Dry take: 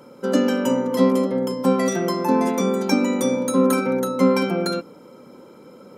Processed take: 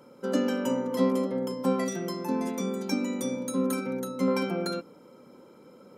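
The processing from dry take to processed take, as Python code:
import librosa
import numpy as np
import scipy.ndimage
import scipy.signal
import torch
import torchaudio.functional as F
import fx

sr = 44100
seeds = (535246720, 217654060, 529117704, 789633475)

y = fx.peak_eq(x, sr, hz=890.0, db=-6.0, octaves=2.5, at=(1.84, 4.28))
y = y * librosa.db_to_amplitude(-7.5)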